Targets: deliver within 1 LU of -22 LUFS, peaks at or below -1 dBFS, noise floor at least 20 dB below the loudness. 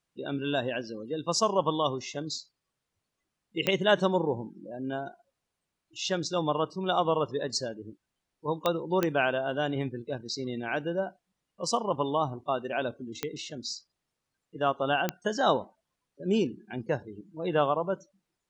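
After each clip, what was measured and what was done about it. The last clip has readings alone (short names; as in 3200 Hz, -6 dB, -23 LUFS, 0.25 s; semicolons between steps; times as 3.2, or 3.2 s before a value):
clicks 5; loudness -30.0 LUFS; peak -10.5 dBFS; loudness target -22.0 LUFS
-> de-click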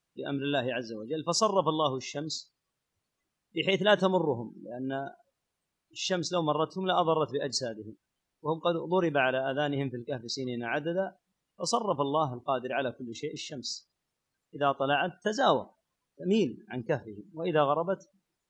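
clicks 0; loudness -30.0 LUFS; peak -10.5 dBFS; loudness target -22.0 LUFS
-> gain +8 dB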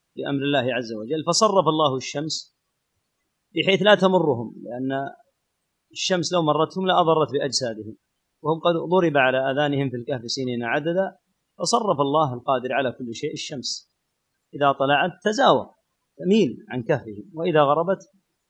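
loudness -22.0 LUFS; peak -2.5 dBFS; noise floor -76 dBFS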